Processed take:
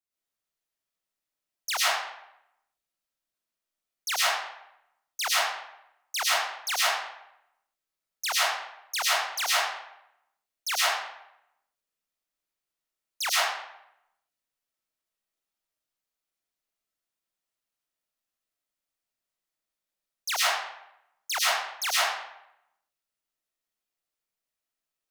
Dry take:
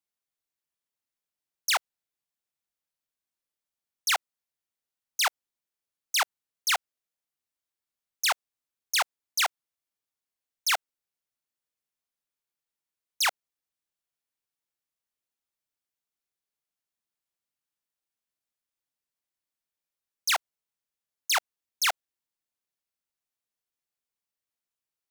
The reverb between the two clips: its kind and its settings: algorithmic reverb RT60 0.81 s, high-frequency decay 0.75×, pre-delay 70 ms, DRR -8 dB; trim -5.5 dB

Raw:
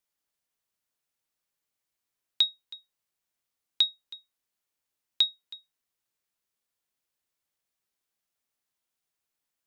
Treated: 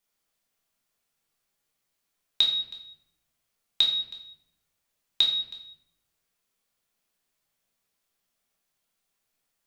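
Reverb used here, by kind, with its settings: simulated room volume 200 m³, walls mixed, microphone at 1.3 m; trim +2.5 dB

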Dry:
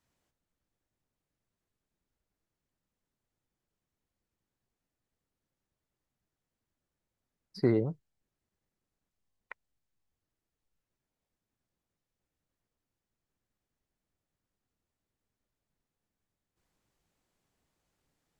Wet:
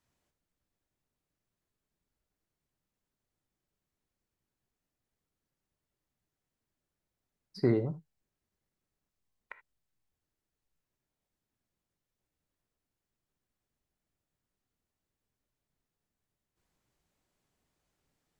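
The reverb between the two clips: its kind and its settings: gated-style reverb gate 100 ms flat, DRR 10.5 dB; trim -1 dB

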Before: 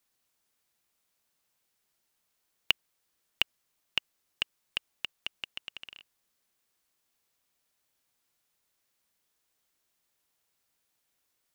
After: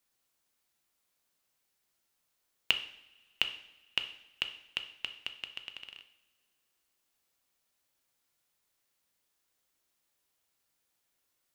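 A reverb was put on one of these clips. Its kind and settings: two-slope reverb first 0.67 s, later 2.4 s, from -21 dB, DRR 7 dB; trim -2 dB

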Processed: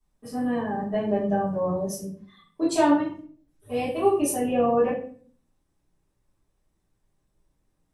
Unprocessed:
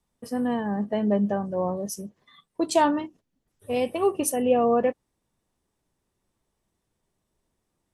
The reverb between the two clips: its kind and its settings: simulated room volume 41 m³, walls mixed, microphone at 2.9 m; trim -13.5 dB

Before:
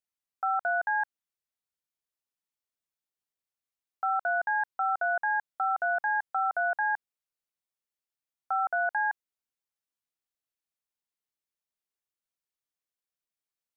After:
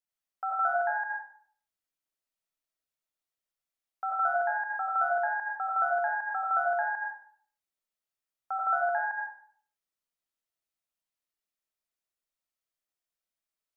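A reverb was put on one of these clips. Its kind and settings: algorithmic reverb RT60 0.54 s, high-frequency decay 0.7×, pre-delay 45 ms, DRR -3 dB; trim -4 dB

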